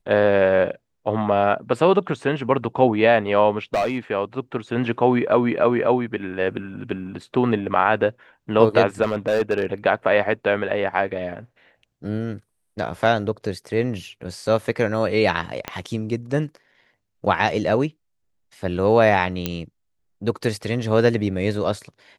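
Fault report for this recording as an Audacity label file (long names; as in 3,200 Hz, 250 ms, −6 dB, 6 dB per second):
3.740000	3.980000	clipping −17 dBFS
9.020000	9.650000	clipping −14.5 dBFS
15.680000	15.680000	click −11 dBFS
19.460000	19.460000	click −8 dBFS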